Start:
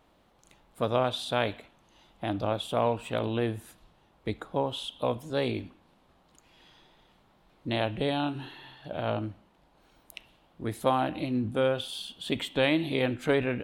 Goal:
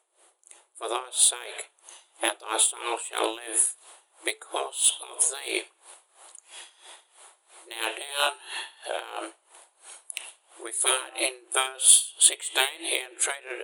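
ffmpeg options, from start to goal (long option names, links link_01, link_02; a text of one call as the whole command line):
ffmpeg -i in.wav -filter_complex "[0:a]highshelf=frequency=2500:gain=5,acrossover=split=580[link_01][link_02];[link_02]dynaudnorm=framelen=440:gausssize=7:maxgain=10.5dB[link_03];[link_01][link_03]amix=inputs=2:normalize=0,afftfilt=real='re*between(b*sr/4096,330,11000)':imag='im*between(b*sr/4096,330,11000)':win_size=4096:overlap=0.75,bandreject=frequency=435.3:width_type=h:width=4,bandreject=frequency=870.6:width_type=h:width=4,bandreject=frequency=1305.9:width_type=h:width=4,afftfilt=real='re*lt(hypot(re,im),0.316)':imag='im*lt(hypot(re,im),0.316)':win_size=1024:overlap=0.75,asplit=2[link_04][link_05];[link_05]asoftclip=type=tanh:threshold=-21.5dB,volume=-9.5dB[link_06];[link_04][link_06]amix=inputs=2:normalize=0,aexciter=amount=11.5:drive=4.8:freq=7600,aeval=exprs='val(0)*pow(10,-20*(0.5-0.5*cos(2*PI*3*n/s))/20)':channel_layout=same,volume=2dB" out.wav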